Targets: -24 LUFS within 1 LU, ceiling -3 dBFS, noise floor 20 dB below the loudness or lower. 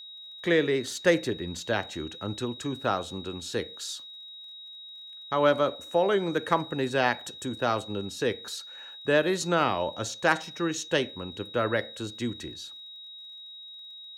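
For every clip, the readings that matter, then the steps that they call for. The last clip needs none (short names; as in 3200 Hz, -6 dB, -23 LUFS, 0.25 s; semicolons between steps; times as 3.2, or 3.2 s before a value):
ticks 42/s; steady tone 3800 Hz; tone level -42 dBFS; loudness -28.5 LUFS; peak -10.0 dBFS; loudness target -24.0 LUFS
-> de-click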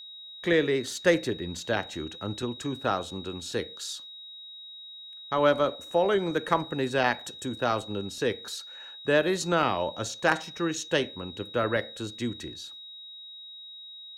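ticks 0.14/s; steady tone 3800 Hz; tone level -42 dBFS
-> notch 3800 Hz, Q 30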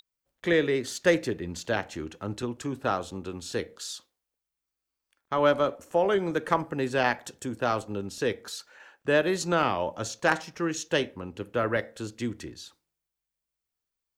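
steady tone none; loudness -28.5 LUFS; peak -10.0 dBFS; loudness target -24.0 LUFS
-> gain +4.5 dB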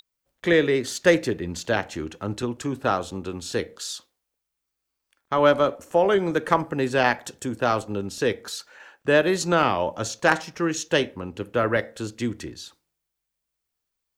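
loudness -24.0 LUFS; peak -5.5 dBFS; noise floor -82 dBFS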